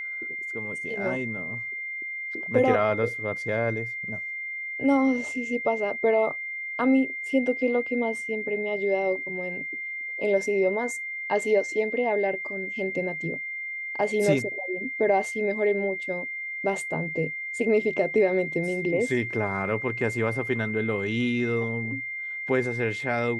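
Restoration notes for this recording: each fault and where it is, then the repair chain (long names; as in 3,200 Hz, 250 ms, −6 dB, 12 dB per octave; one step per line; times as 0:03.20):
whistle 2,100 Hz −31 dBFS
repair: notch filter 2,100 Hz, Q 30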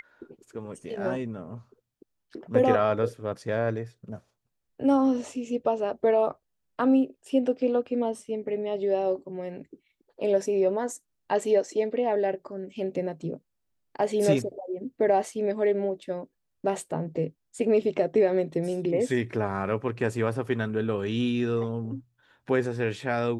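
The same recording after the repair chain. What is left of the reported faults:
none of them is left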